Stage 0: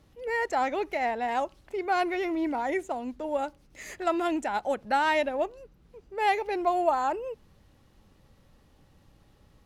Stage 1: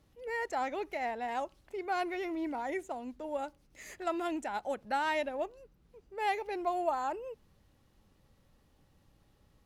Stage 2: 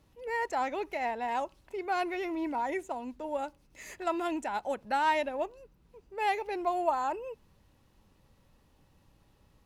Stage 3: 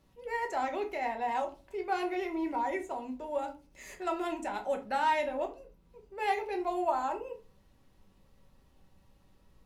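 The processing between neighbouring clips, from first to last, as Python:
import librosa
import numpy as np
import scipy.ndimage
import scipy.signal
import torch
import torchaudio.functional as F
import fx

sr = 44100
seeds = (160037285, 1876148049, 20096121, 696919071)

y1 = fx.high_shelf(x, sr, hz=8100.0, db=4.0)
y1 = y1 * 10.0 ** (-7.0 / 20.0)
y2 = fx.small_body(y1, sr, hz=(960.0, 2600.0), ring_ms=45, db=8)
y2 = y2 * 10.0 ** (2.0 / 20.0)
y3 = fx.room_shoebox(y2, sr, seeds[0], volume_m3=160.0, walls='furnished', distance_m=1.1)
y3 = y3 * 10.0 ** (-3.0 / 20.0)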